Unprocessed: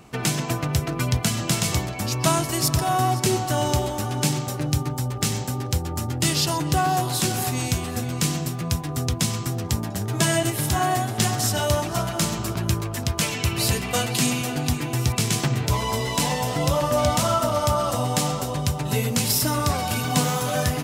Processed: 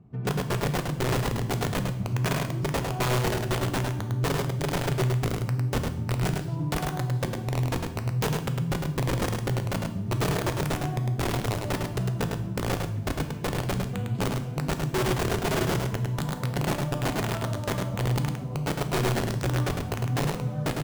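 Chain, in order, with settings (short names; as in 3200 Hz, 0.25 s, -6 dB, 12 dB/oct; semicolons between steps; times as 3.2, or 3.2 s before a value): band-pass 120 Hz, Q 1.2; wrapped overs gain 22 dB; on a send: echo 0.104 s -4.5 dB; on the sum: two-slope reverb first 0.6 s, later 2.4 s, from -18 dB, DRR 7.5 dB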